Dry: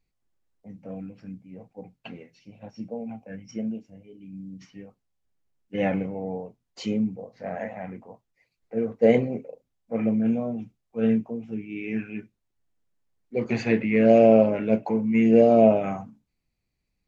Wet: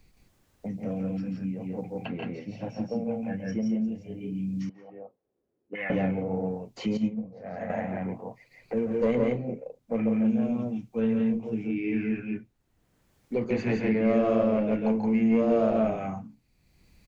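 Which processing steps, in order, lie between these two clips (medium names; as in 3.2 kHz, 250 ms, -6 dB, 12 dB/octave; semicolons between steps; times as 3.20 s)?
single-diode clipper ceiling -12 dBFS; bass shelf 200 Hz +3.5 dB; loudspeakers at several distances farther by 47 m -6 dB, 58 m -2 dB; 4.69–5.90 s: auto-wah 380–2000 Hz, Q 3.1, up, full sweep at -29 dBFS; 6.97–7.70 s: gate -19 dBFS, range -11 dB; three bands compressed up and down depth 70%; trim -4.5 dB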